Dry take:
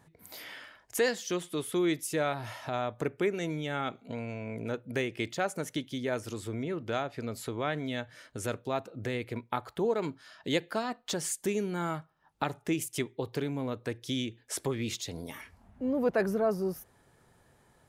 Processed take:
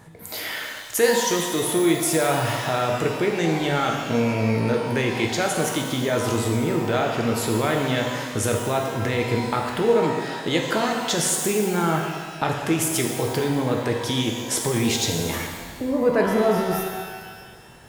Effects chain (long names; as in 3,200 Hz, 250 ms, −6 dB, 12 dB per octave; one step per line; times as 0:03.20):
in parallel at −0.5 dB: compressor whose output falls as the input rises −37 dBFS
on the sum: reverb with rising layers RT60 1.6 s, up +12 semitones, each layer −8 dB, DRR 1 dB
level +4.5 dB